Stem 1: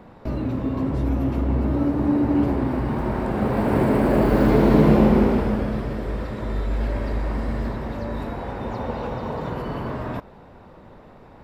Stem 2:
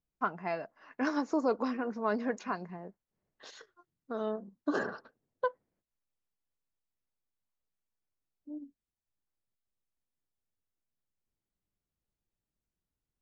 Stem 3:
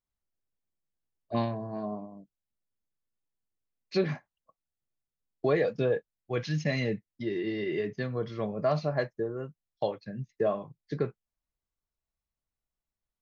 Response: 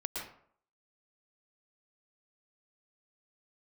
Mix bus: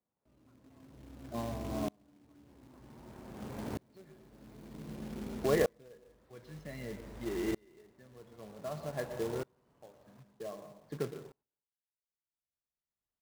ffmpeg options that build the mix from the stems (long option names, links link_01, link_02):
-filter_complex "[0:a]acrossover=split=240|3000[link_01][link_02][link_03];[link_02]acompressor=threshold=-29dB:ratio=2.5[link_04];[link_01][link_04][link_03]amix=inputs=3:normalize=0,volume=-15.5dB,asplit=2[link_05][link_06];[link_06]volume=-11dB[link_07];[1:a]acompressor=threshold=-32dB:ratio=6,adelay=250,volume=-16.5dB[link_08];[2:a]highshelf=frequency=4200:gain=-12,bandreject=frequency=2500:width=7.1,volume=-3dB,asplit=2[link_09][link_10];[link_10]volume=-9dB[link_11];[3:a]atrim=start_sample=2205[link_12];[link_07][link_11]amix=inputs=2:normalize=0[link_13];[link_13][link_12]afir=irnorm=-1:irlink=0[link_14];[link_05][link_08][link_09][link_14]amix=inputs=4:normalize=0,highpass=frequency=94:poles=1,acrusher=bits=3:mode=log:mix=0:aa=0.000001,aeval=exprs='val(0)*pow(10,-32*if(lt(mod(-0.53*n/s,1),2*abs(-0.53)/1000),1-mod(-0.53*n/s,1)/(2*abs(-0.53)/1000),(mod(-0.53*n/s,1)-2*abs(-0.53)/1000)/(1-2*abs(-0.53)/1000))/20)':channel_layout=same"